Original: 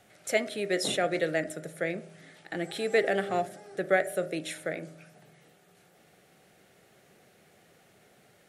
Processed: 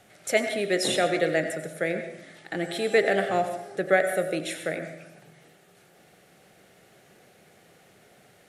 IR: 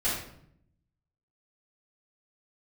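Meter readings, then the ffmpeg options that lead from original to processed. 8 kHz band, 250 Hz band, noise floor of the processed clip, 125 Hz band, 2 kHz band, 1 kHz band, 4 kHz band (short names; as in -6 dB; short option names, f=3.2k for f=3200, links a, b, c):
+4.0 dB, +4.0 dB, -58 dBFS, +3.5 dB, +4.0 dB, +4.5 dB, +4.0 dB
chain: -filter_complex "[0:a]asplit=2[a][b];[b]equalizer=f=600:t=o:w=0.77:g=4.5[c];[1:a]atrim=start_sample=2205,lowshelf=f=380:g=-9.5,adelay=85[d];[c][d]afir=irnorm=-1:irlink=0,volume=-17dB[e];[a][e]amix=inputs=2:normalize=0,aresample=32000,aresample=44100,volume=3.5dB"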